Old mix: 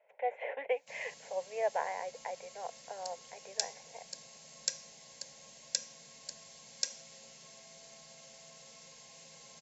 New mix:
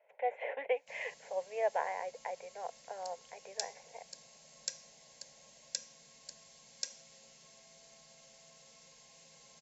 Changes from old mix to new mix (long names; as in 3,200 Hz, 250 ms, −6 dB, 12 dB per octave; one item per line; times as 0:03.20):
background −5.0 dB
master: remove high-pass filter 50 Hz